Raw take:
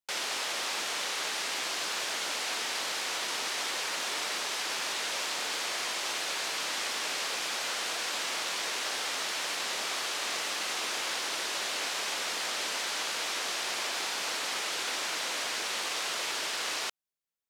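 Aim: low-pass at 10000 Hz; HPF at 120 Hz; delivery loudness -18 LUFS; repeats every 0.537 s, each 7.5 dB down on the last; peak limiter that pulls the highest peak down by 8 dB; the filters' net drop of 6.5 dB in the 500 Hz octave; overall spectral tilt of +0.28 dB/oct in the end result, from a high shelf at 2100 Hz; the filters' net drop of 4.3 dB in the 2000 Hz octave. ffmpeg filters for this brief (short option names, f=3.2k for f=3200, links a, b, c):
-af "highpass=120,lowpass=10k,equalizer=f=500:t=o:g=-8.5,equalizer=f=2k:t=o:g=-9,highshelf=f=2.1k:g=6,alimiter=level_in=2dB:limit=-24dB:level=0:latency=1,volume=-2dB,aecho=1:1:537|1074|1611|2148|2685:0.422|0.177|0.0744|0.0312|0.0131,volume=14dB"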